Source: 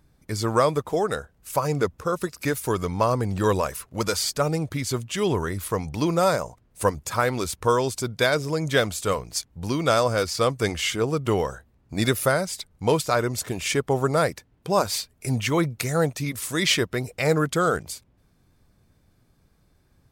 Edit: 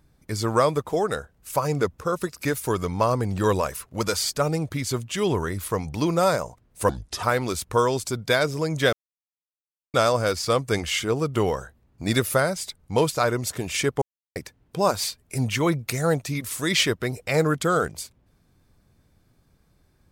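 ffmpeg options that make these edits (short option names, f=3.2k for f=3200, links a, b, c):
-filter_complex "[0:a]asplit=7[a][b][c][d][e][f][g];[a]atrim=end=6.894[h];[b]atrim=start=6.89:end=7.14,asetpts=PTS-STARTPTS,asetrate=32634,aresample=44100[i];[c]atrim=start=7.136:end=8.84,asetpts=PTS-STARTPTS,afade=t=out:st=1.7:d=0.004:c=hsin[j];[d]atrim=start=8.84:end=9.85,asetpts=PTS-STARTPTS,volume=0[k];[e]atrim=start=9.85:end=13.93,asetpts=PTS-STARTPTS,afade=t=in:d=0.004:c=hsin,afade=t=out:st=4.076:d=0.004:c=hsin[l];[f]atrim=start=13.93:end=14.27,asetpts=PTS-STARTPTS,volume=0[m];[g]atrim=start=14.27,asetpts=PTS-STARTPTS,afade=t=in:d=0.004:c=hsin[n];[h][i]acrossfade=d=0.004:c1=hsin:c2=hsin[o];[j][k][l][m][n]concat=n=5:v=0:a=1[p];[o][p]acrossfade=d=0.004:c1=hsin:c2=hsin"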